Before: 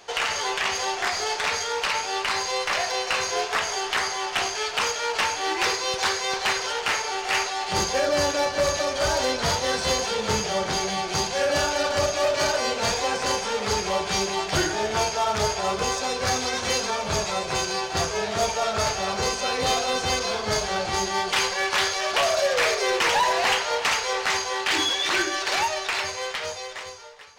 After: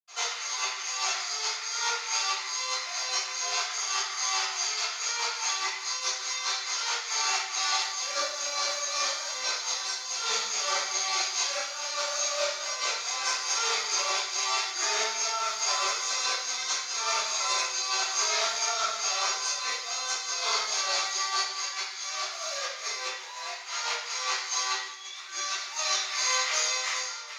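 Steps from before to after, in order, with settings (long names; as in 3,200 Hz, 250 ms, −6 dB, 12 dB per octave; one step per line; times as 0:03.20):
high-pass filter 1,500 Hz 12 dB per octave
compressor whose output falls as the input rises −34 dBFS, ratio −0.5
convolution reverb RT60 0.70 s, pre-delay 76 ms, DRR −60 dB
level −2 dB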